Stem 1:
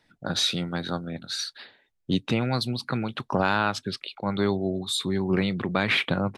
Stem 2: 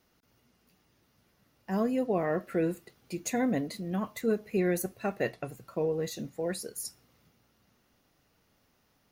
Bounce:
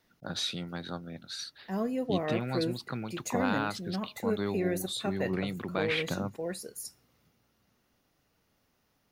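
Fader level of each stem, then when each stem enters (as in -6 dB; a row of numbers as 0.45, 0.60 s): -8.5, -3.0 dB; 0.00, 0.00 s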